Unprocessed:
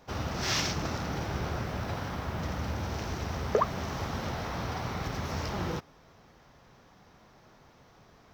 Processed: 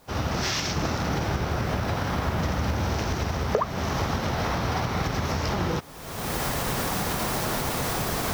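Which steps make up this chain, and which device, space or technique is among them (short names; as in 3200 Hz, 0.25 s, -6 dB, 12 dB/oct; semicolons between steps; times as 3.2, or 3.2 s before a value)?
cheap recorder with automatic gain (white noise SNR 29 dB; recorder AGC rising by 40 dB/s)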